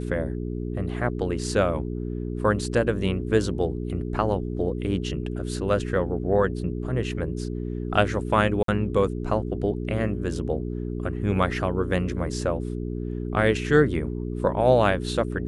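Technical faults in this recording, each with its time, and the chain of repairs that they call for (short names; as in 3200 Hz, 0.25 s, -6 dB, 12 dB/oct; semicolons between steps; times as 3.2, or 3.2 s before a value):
hum 60 Hz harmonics 7 -30 dBFS
8.63–8.68 gap 53 ms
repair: de-hum 60 Hz, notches 7; interpolate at 8.63, 53 ms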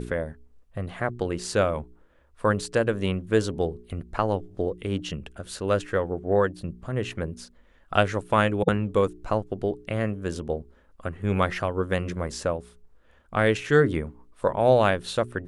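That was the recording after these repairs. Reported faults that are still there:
none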